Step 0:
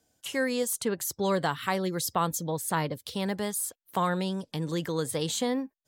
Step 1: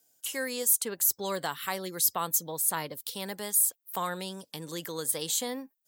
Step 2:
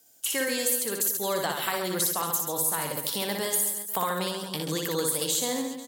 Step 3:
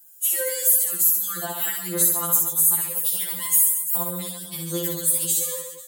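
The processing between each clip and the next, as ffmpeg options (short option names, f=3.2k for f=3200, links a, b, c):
-af "aemphasis=mode=production:type=bsi,volume=-4.5dB"
-af "acompressor=threshold=-33dB:ratio=6,aecho=1:1:60|135|228.8|345.9|492.4:0.631|0.398|0.251|0.158|0.1,volume=7.5dB"
-af "aexciter=amount=5.2:drive=3.2:freq=7.1k,afftfilt=real='re*2.83*eq(mod(b,8),0)':imag='im*2.83*eq(mod(b,8),0)':win_size=2048:overlap=0.75,volume=-1.5dB"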